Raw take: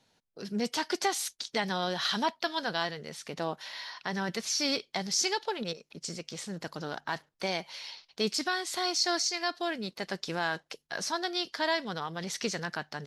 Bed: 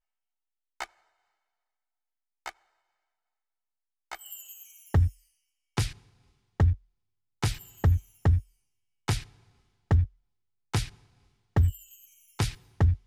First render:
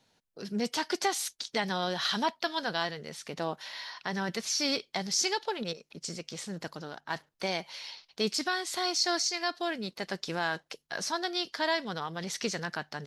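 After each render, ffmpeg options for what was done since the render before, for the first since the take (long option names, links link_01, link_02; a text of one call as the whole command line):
ffmpeg -i in.wav -filter_complex "[0:a]asplit=2[link_01][link_02];[link_01]atrim=end=7.1,asetpts=PTS-STARTPTS,afade=type=out:start_time=6.66:duration=0.44:curve=qua:silence=0.446684[link_03];[link_02]atrim=start=7.1,asetpts=PTS-STARTPTS,afade=type=in:duration=0.004:curve=hsin:silence=0.446684[link_04];[link_03][link_04]concat=n=2:v=0:a=1" out.wav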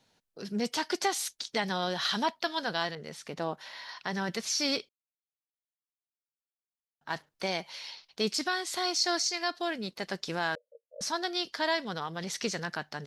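ffmpeg -i in.wav -filter_complex "[0:a]asettb=1/sr,asplit=3[link_01][link_02][link_03];[link_01]atrim=end=2.954[link_04];[link_02]atrim=start=2.95:end=3.89,asetpts=PTS-STARTPTS,afade=type=in:duration=0.004:curve=qsin,afade=type=out:start_time=0.936:duration=0.004:curve=qsin,adynamicequalizer=threshold=0.00282:dfrequency=2100:dqfactor=0.7:tfrequency=2100:tqfactor=0.7:attack=5:release=100:ratio=0.375:range=3:mode=cutabove:tftype=highshelf[link_05];[link_03]atrim=start=3.886[link_06];[link_04][link_05]acrossfade=duration=0.004:curve1=hsin:curve2=qsin[link_07];[link_07][link_06]acrossfade=duration=0.004:curve1=qsin:curve2=hsin,asettb=1/sr,asplit=3[link_08][link_09][link_10];[link_08]atrim=end=10.554[link_11];[link_09]atrim=start=10.55:end=11.01,asetpts=PTS-STARTPTS,afade=type=in:duration=0.004:curve=qsin,afade=type=out:start_time=0.456:duration=0.004:curve=qsin,asuperpass=centerf=530:order=12:qfactor=3.3[link_12];[link_10]atrim=start=11.006[link_13];[link_11][link_12]acrossfade=duration=0.004:curve1=hsin:curve2=qsin[link_14];[link_14][link_13]acrossfade=duration=0.004:curve1=qsin:curve2=hsin,asplit=3[link_15][link_16][link_17];[link_15]atrim=end=4.89,asetpts=PTS-STARTPTS,afade=type=out:start_time=4.886:duration=0.004:curve=hsin[link_18];[link_16]atrim=start=4.89:end=7.01,asetpts=PTS-STARTPTS,volume=0[link_19];[link_17]atrim=start=7.01,asetpts=PTS-STARTPTS,afade=type=in:duration=0.004:curve=hsin[link_20];[link_18][link_19][link_20]concat=n=3:v=0:a=1" out.wav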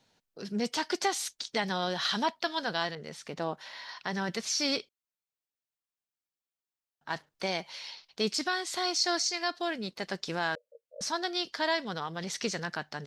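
ffmpeg -i in.wav -af "equalizer=frequency=11000:width_type=o:width=0.28:gain=-6.5" out.wav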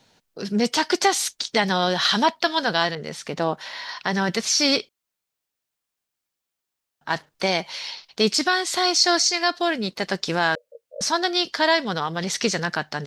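ffmpeg -i in.wav -af "volume=10dB" out.wav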